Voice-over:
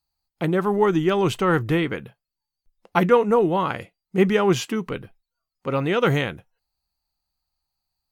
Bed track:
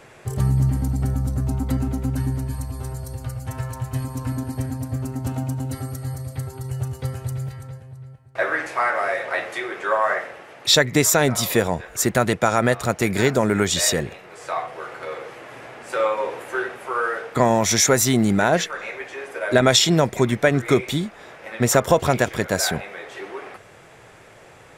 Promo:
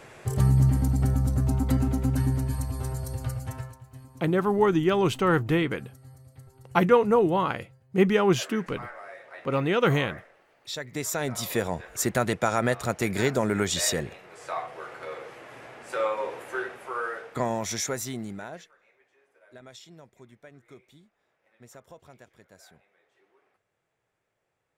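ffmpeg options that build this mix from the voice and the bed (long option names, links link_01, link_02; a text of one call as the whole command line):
ffmpeg -i stem1.wav -i stem2.wav -filter_complex "[0:a]adelay=3800,volume=-2.5dB[link_01];[1:a]volume=13dB,afade=type=out:start_time=3.31:duration=0.47:silence=0.112202,afade=type=in:start_time=10.76:duration=1.1:silence=0.199526,afade=type=out:start_time=16.51:duration=2.25:silence=0.0473151[link_02];[link_01][link_02]amix=inputs=2:normalize=0" out.wav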